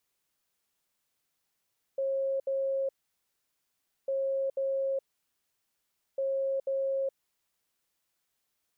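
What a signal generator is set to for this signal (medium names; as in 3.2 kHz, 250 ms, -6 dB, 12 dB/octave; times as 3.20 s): beep pattern sine 541 Hz, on 0.42 s, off 0.07 s, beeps 2, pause 1.19 s, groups 3, -27 dBFS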